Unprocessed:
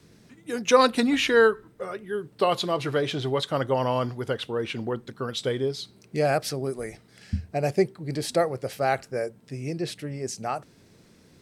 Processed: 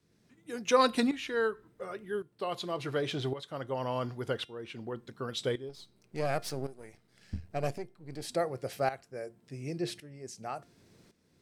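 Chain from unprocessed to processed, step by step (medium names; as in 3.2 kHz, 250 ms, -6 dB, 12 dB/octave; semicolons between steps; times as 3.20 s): 5.69–8.22 s: partial rectifier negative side -7 dB; tremolo saw up 0.9 Hz, depth 80%; feedback comb 350 Hz, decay 0.34 s, harmonics all, mix 40%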